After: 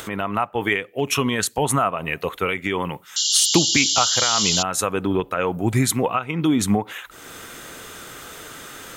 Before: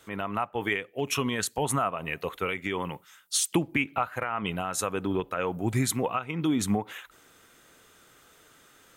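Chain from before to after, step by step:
sound drawn into the spectrogram noise, 0:03.16–0:04.63, 2,800–7,500 Hz −28 dBFS
upward compression, threshold −33 dBFS
level +7 dB

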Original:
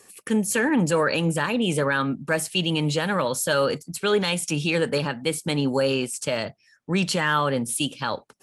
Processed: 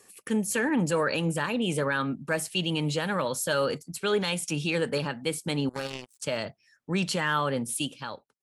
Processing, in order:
fade-out on the ending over 0.65 s
0:05.69–0:06.20: power curve on the samples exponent 3
level −4.5 dB

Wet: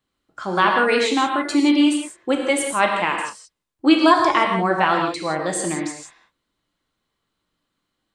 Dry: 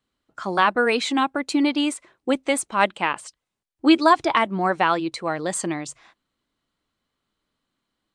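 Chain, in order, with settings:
reverb whose tail is shaped and stops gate 200 ms flat, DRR 1 dB

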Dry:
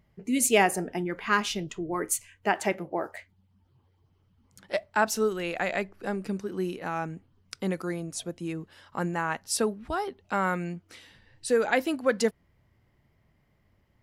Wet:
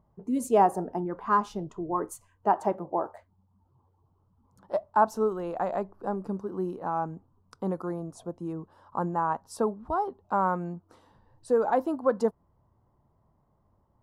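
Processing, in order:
high shelf with overshoot 1,500 Hz −13.5 dB, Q 3
level −1.5 dB

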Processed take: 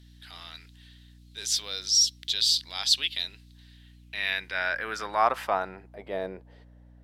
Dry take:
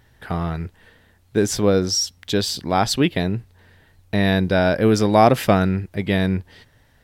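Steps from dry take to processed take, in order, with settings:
RIAA equalisation recording
transient designer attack −5 dB, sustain +1 dB
band-pass filter sweep 3,800 Hz → 570 Hz, 0:03.68–0:06.17
mains hum 60 Hz, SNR 22 dB

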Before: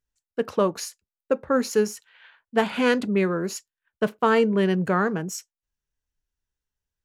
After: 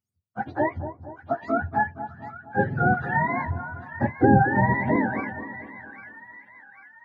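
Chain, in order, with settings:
frequency axis turned over on the octave scale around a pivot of 600 Hz
0:03.46–0:04.96: spectral tilt −3 dB per octave
echo with a time of its own for lows and highs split 1,200 Hz, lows 234 ms, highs 794 ms, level −11 dB

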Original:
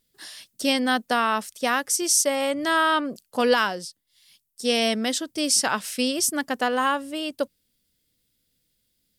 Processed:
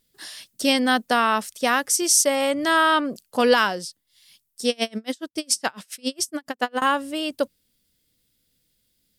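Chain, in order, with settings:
0:04.69–0:06.82: tremolo with a sine in dB 7.2 Hz, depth 35 dB
level +2.5 dB

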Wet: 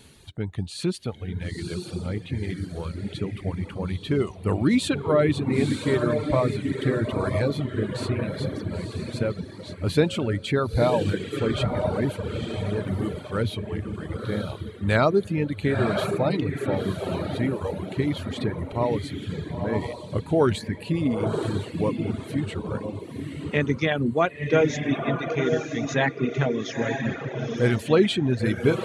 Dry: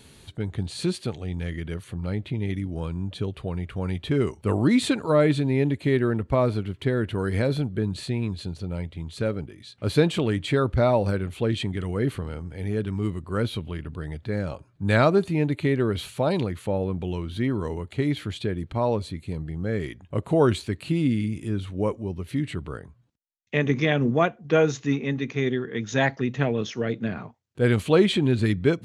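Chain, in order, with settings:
feedback delay with all-pass diffusion 968 ms, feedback 42%, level −3 dB
reverb reduction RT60 1.2 s

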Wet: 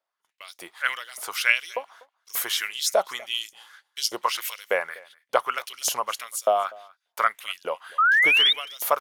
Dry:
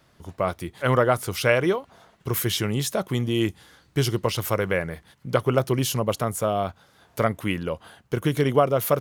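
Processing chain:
auto-filter high-pass saw up 1.7 Hz 580–6,400 Hz
sound drawn into the spectrogram rise, 0:07.98–0:08.53, 1,200–3,800 Hz −18 dBFS
noise gate −49 dBFS, range −26 dB
on a send: single-tap delay 245 ms −23.5 dB

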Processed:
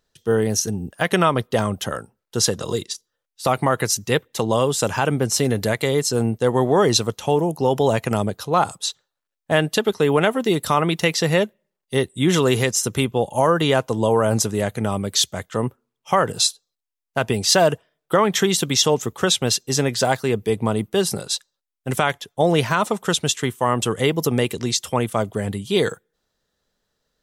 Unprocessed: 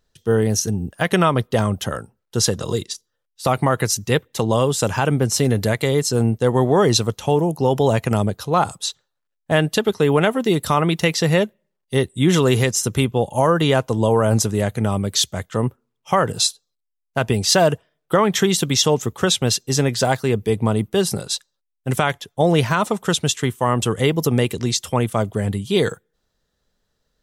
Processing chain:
low-shelf EQ 140 Hz −8 dB
0:08.47–0:08.89: one half of a high-frequency compander decoder only

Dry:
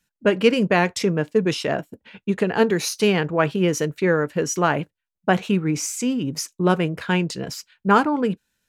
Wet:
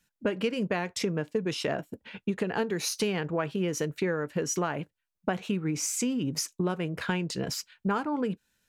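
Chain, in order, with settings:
downward compressor 6 to 1, threshold −26 dBFS, peak gain reduction 15 dB

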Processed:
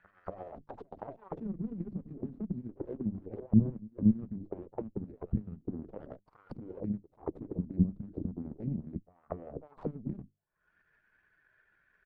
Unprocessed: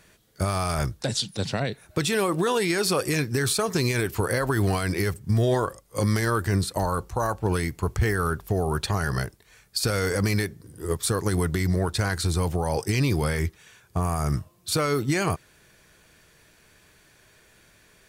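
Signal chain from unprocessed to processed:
spectral dynamics exaggerated over time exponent 1.5
mains-hum notches 50/100/150/200/250/300 Hz
upward compression, threshold −31 dBFS
tempo change 1.5×
harmonic generator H 2 −10 dB, 3 −10 dB, 7 −33 dB, 8 −23 dB, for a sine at −15 dBFS
echo ahead of the sound 235 ms −23 dB
envelope-controlled low-pass 210–1,600 Hz down, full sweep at −33 dBFS
level −2.5 dB

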